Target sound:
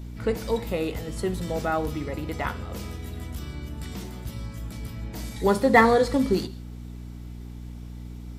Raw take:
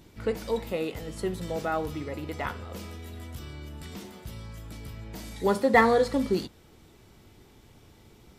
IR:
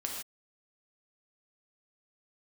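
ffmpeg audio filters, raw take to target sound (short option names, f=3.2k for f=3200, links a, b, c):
-filter_complex "[0:a]aeval=exprs='val(0)+0.01*(sin(2*PI*60*n/s)+sin(2*PI*2*60*n/s)/2+sin(2*PI*3*60*n/s)/3+sin(2*PI*4*60*n/s)/4+sin(2*PI*5*60*n/s)/5)':c=same,asplit=2[a][b];[b]asuperstop=centerf=1200:order=8:qfactor=0.54[c];[1:a]atrim=start_sample=2205[d];[c][d]afir=irnorm=-1:irlink=0,volume=-15dB[e];[a][e]amix=inputs=2:normalize=0,volume=3dB"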